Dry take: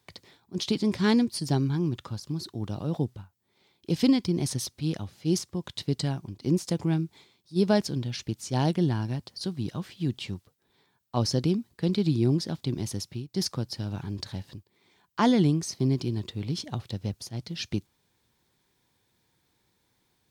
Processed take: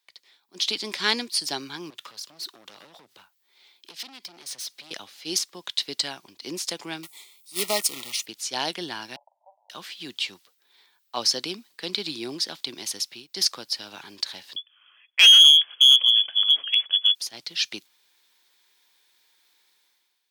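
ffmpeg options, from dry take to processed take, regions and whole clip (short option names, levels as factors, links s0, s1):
-filter_complex "[0:a]asettb=1/sr,asplit=3[s0][s1][s2];[s0]atrim=end=1.904[s3];[s1]atrim=start=1.9:end=4.91,asetpts=PTS-STARTPTS,afade=t=in:d=0.004:c=qsin,afade=t=out:st=3.006:d=0.004:c=qsin,highpass=f=99:w=0.5412,highpass=f=99:w=1.3066,acompressor=threshold=0.0178:ratio=12:attack=3.2:release=140:knee=1:detection=peak,asoftclip=type=hard:threshold=0.0106[s4];[s2]atrim=start=4.906[s5];[s3][s4]acrossfade=d=0.004:c1=hsin:c2=qsin[s6];[s6][s5]acrossfade=d=0.004:c1=qsin:c2=hsin,asettb=1/sr,asplit=3[s7][s8][s9];[s7]atrim=end=7.034[s10];[s8]atrim=start=7.03:end=8.26,asetpts=PTS-STARTPTS,afade=t=in:d=0.004:c=qsin,afade=t=out:st=1.226:d=0.004:c=qsin,highshelf=f=6700:t=q:w=1.5:g=13,acrusher=bits=3:mode=log:mix=0:aa=0.000001,asuperstop=centerf=1600:order=20:qfactor=3.8[s11];[s9]atrim=start=8.256[s12];[s10][s11]acrossfade=d=0.004:c1=hsin:c2=qsin[s13];[s13][s12]acrossfade=d=0.004:c1=qsin:c2=hsin,asettb=1/sr,asplit=3[s14][s15][s16];[s14]atrim=end=9.164[s17];[s15]atrim=start=9.16:end=9.7,asetpts=PTS-STARTPTS,afade=t=in:d=0.004:c=qsin,afade=t=out:st=0.536:d=0.004:c=qsin,asuperpass=centerf=740:order=12:qfactor=2,asplit=2[s18][s19];[s19]adelay=43,volume=0.237[s20];[s18][s20]amix=inputs=2:normalize=0,atrim=end_sample=23814[s21];[s16]atrim=start=9.696[s22];[s17][s21]acrossfade=d=0.004:c1=hsin:c2=qsin[s23];[s23][s22]acrossfade=d=0.004:c1=qsin:c2=hsin,asettb=1/sr,asplit=3[s24][s25][s26];[s24]atrim=end=14.564[s27];[s25]atrim=start=14.56:end=17.15,asetpts=PTS-STARTPTS,afade=t=in:d=0.004:c=qsin,afade=t=out:st=2.586:d=0.004:c=qsin,lowpass=f=3000:t=q:w=0.5098,lowpass=f=3000:t=q:w=0.6013,lowpass=f=3000:t=q:w=0.9,lowpass=f=3000:t=q:w=2.563,afreqshift=-3500,aeval=exprs='clip(val(0),-1,0.0891)':c=same[s28];[s26]atrim=start=17.146[s29];[s27][s28]acrossfade=d=0.004:c1=hsin:c2=qsin[s30];[s30][s29]acrossfade=d=0.004:c1=qsin:c2=hsin,aderivative,dynaudnorm=f=100:g=11:m=4.47,acrossover=split=210 4400:gain=0.178 1 0.178[s31][s32][s33];[s31][s32][s33]amix=inputs=3:normalize=0,volume=2.11"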